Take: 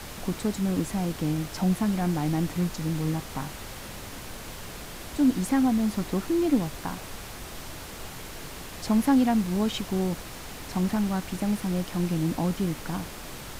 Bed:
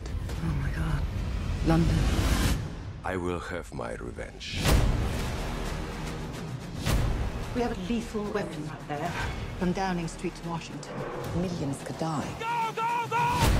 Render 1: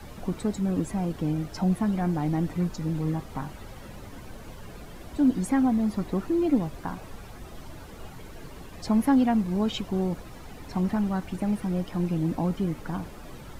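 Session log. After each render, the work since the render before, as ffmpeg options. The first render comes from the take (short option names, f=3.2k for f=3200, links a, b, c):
-af "afftdn=nr=12:nf=-40"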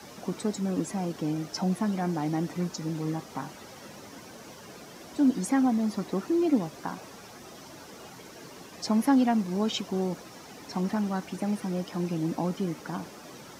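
-af "highpass=200,equalizer=f=5.7k:w=2:g=8.5"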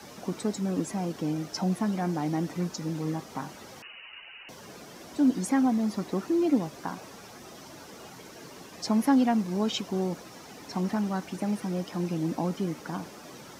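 -filter_complex "[0:a]asettb=1/sr,asplit=3[a][b][c];[a]atrim=end=3.824[d];[b]atrim=start=3.82:end=4.49,asetpts=PTS-STARTPTS,afade=t=in:d=0.004:c=qsin,afade=t=out:st=0.666:d=0.004:c=qsin,lowpass=f=2.6k:t=q:w=0.5098,lowpass=f=2.6k:t=q:w=0.6013,lowpass=f=2.6k:t=q:w=0.9,lowpass=f=2.6k:t=q:w=2.563,afreqshift=-3100[e];[c]atrim=start=4.486[f];[d][e]acrossfade=d=0.004:c1=hsin:c2=qsin[g];[g][f]acrossfade=d=0.004:c1=qsin:c2=hsin"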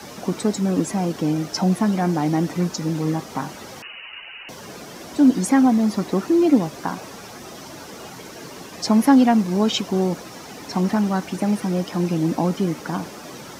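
-af "volume=8.5dB"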